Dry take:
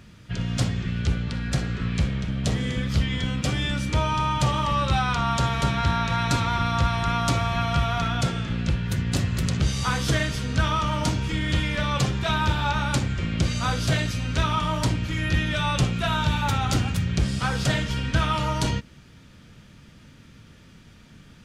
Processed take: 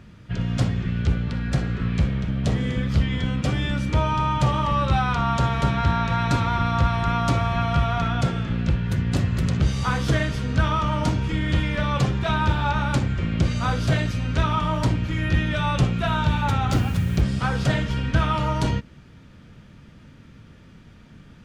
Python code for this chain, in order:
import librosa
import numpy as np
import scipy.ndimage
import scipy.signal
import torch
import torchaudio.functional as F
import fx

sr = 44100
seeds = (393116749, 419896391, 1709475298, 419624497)

y = fx.high_shelf(x, sr, hz=3000.0, db=-10.5)
y = fx.quant_dither(y, sr, seeds[0], bits=8, dither='none', at=(16.7, 17.2), fade=0.02)
y = y * librosa.db_to_amplitude(2.5)